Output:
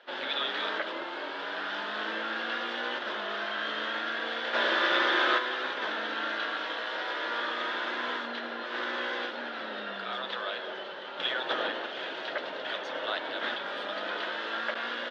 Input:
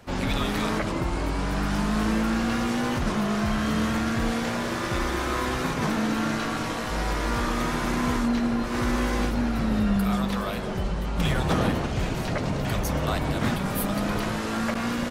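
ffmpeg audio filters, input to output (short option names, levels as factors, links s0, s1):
-filter_complex "[0:a]asplit=3[s0][s1][s2];[s0]afade=t=out:st=4.53:d=0.02[s3];[s1]acontrast=85,afade=t=in:st=4.53:d=0.02,afade=t=out:st=5.37:d=0.02[s4];[s2]afade=t=in:st=5.37:d=0.02[s5];[s3][s4][s5]amix=inputs=3:normalize=0,highpass=f=430:w=0.5412,highpass=f=430:w=1.3066,equalizer=f=440:t=q:w=4:g=-5,equalizer=f=750:t=q:w=4:g=-6,equalizer=f=1100:t=q:w=4:g=-6,equalizer=f=1600:t=q:w=4:g=5,equalizer=f=2300:t=q:w=4:g=-6,equalizer=f=3400:t=q:w=4:g=8,lowpass=f=3700:w=0.5412,lowpass=f=3700:w=1.3066,volume=0.891"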